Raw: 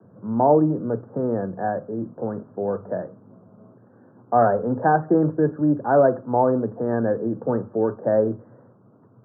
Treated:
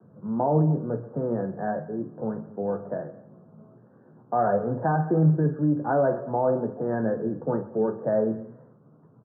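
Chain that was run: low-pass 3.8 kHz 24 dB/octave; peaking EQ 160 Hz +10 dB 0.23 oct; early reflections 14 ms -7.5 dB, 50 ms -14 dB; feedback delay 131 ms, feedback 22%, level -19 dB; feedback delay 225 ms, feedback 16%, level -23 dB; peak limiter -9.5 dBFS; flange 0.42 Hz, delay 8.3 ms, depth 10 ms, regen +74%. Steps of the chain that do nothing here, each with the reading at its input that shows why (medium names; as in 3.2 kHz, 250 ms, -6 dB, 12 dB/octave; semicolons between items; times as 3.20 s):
low-pass 3.8 kHz: input has nothing above 1.7 kHz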